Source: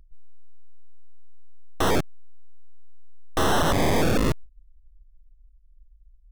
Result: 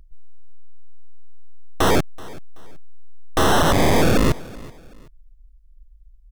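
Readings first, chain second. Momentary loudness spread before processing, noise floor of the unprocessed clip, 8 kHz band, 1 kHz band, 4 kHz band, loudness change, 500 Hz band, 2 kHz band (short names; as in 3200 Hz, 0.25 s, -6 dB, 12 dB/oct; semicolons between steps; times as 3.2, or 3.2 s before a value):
11 LU, -55 dBFS, +5.0 dB, +5.0 dB, +5.0 dB, +5.0 dB, +5.0 dB, +5.0 dB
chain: feedback echo 0.379 s, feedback 33%, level -21 dB; gain +5 dB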